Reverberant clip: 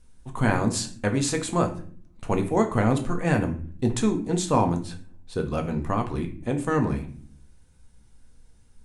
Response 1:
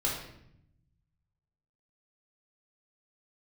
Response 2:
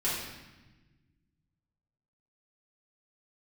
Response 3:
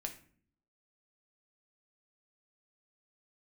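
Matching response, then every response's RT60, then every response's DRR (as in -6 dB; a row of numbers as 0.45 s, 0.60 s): 3; 0.75 s, 1.1 s, 0.50 s; -4.5 dB, -9.5 dB, 3.5 dB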